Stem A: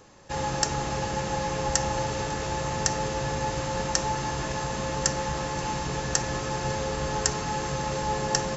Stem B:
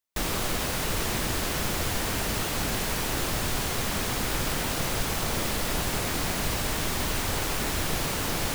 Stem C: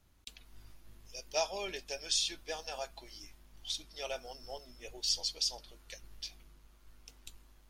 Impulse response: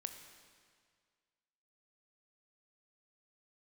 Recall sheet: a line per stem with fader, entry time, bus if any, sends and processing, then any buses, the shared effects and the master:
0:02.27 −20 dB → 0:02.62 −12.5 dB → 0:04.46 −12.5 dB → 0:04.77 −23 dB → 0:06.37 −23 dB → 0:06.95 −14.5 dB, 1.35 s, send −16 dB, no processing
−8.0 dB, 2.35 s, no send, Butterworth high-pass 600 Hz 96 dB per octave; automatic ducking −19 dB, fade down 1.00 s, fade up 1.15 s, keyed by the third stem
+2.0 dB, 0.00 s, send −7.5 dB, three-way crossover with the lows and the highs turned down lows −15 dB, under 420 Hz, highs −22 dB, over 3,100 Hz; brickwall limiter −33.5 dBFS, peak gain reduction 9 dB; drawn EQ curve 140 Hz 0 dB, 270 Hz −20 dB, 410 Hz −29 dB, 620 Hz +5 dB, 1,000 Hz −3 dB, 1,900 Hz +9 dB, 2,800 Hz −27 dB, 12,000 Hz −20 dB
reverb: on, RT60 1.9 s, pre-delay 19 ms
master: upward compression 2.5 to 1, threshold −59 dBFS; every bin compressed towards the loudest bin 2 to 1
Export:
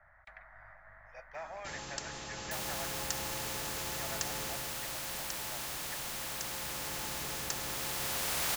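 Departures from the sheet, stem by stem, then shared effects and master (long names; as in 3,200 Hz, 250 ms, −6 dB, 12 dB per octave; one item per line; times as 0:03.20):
stem B −8.0 dB → +2.0 dB
stem C: send off
master: missing upward compression 2.5 to 1, threshold −59 dBFS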